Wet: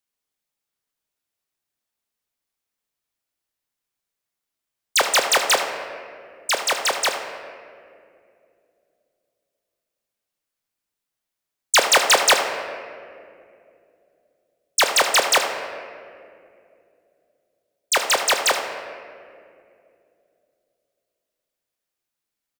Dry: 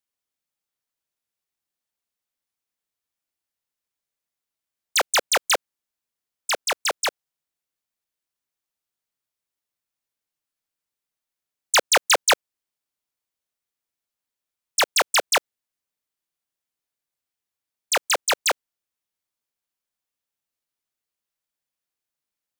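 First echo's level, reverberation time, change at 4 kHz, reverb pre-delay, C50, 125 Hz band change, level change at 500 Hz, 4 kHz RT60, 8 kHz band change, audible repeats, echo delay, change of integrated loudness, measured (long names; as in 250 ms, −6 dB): −12.0 dB, 2.5 s, +3.0 dB, 3 ms, 5.5 dB, can't be measured, +3.5 dB, 1.3 s, +2.5 dB, 1, 76 ms, +2.5 dB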